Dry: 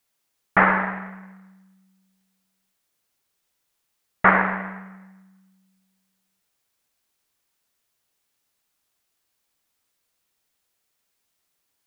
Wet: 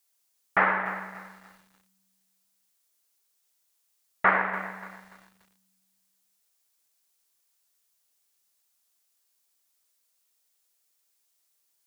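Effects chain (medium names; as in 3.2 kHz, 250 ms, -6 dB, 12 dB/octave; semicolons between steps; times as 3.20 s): tone controls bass -10 dB, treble +9 dB; bit-crushed delay 290 ms, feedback 35%, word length 7-bit, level -14 dB; trim -5.5 dB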